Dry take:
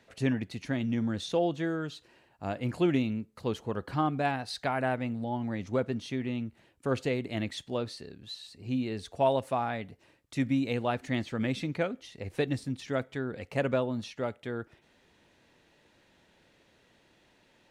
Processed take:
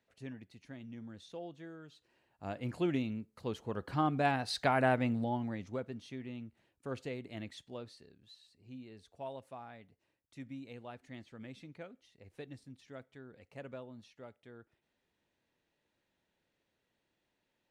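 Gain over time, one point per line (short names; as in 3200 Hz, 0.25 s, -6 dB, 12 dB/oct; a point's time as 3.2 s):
1.85 s -17.5 dB
2.5 s -6.5 dB
3.52 s -6.5 dB
4.56 s +1 dB
5.17 s +1 dB
5.83 s -11 dB
7.5 s -11 dB
8.71 s -18 dB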